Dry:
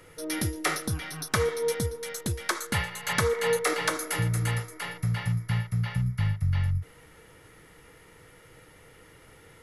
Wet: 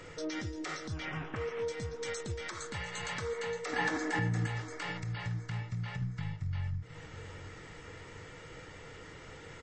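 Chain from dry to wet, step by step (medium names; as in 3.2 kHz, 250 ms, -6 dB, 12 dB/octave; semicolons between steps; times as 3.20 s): 1.05–1.63 s: CVSD coder 16 kbps; 6.01–6.41 s: comb 6.1 ms, depth 87%; compression 20:1, threshold -36 dBFS, peak gain reduction 16.5 dB; peak limiter -32.5 dBFS, peak gain reduction 9.5 dB; 3.73–4.47 s: small resonant body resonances 250/790/1700 Hz, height 15 dB, ringing for 25 ms; on a send: feedback delay 716 ms, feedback 41%, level -14 dB; on the sum: trim +4.5 dB; MP3 32 kbps 22.05 kHz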